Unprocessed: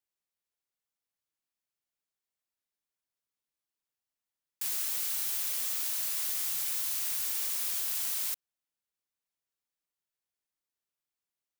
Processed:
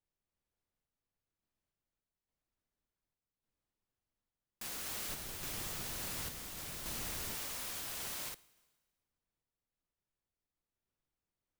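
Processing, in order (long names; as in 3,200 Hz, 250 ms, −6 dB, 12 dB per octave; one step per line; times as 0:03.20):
spectral tilt −3.5 dB per octave
four-comb reverb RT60 1.2 s, combs from 26 ms, DRR 18.5 dB
sample-and-hold tremolo
0:05.09–0:07.35: low-shelf EQ 230 Hz +11.5 dB
level +3.5 dB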